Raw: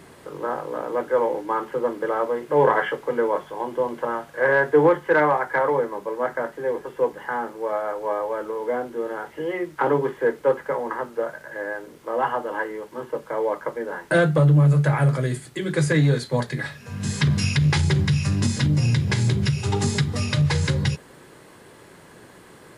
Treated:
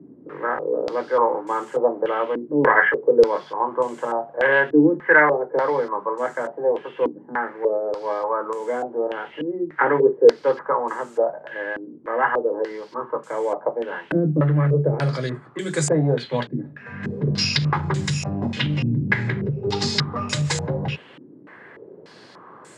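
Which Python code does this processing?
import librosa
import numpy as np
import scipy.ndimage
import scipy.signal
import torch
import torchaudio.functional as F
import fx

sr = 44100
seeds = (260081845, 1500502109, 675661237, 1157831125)

y = scipy.signal.sosfilt(scipy.signal.bessel(8, 160.0, 'highpass', norm='mag', fs=sr, output='sos'), x)
y = fx.filter_held_lowpass(y, sr, hz=3.4, low_hz=280.0, high_hz=7600.0)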